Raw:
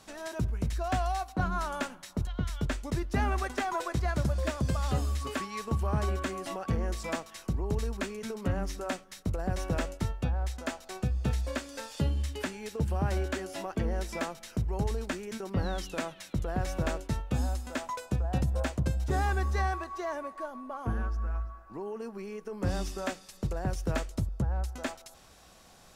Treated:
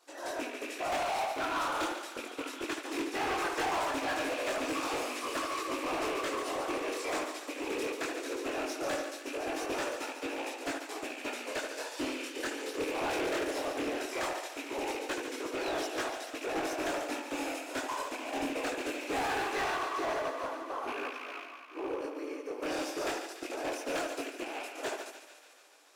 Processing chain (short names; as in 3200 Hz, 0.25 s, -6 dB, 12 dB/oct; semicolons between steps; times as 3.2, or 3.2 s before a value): rattling part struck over -30 dBFS, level -29 dBFS; whisperiser; brick-wall FIR high-pass 260 Hz; on a send: tape echo 75 ms, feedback 72%, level -4 dB, low-pass 1700 Hz; on the sum: chorus voices 2, 0.19 Hz, delay 22 ms, depth 3.8 ms; hard clip -35 dBFS, distortion -10 dB; thin delay 0.144 s, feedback 78%, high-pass 1600 Hz, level -6.5 dB; upward expander 1.5:1, over -59 dBFS; gain +6 dB